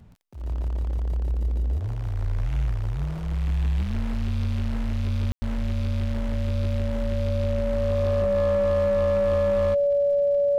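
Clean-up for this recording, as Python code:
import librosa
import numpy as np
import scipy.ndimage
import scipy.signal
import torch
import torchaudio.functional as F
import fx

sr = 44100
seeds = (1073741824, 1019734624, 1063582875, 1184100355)

y = fx.fix_declip(x, sr, threshold_db=-18.0)
y = fx.fix_declick_ar(y, sr, threshold=6.5)
y = fx.notch(y, sr, hz=570.0, q=30.0)
y = fx.fix_ambience(y, sr, seeds[0], print_start_s=0.0, print_end_s=0.5, start_s=5.32, end_s=5.42)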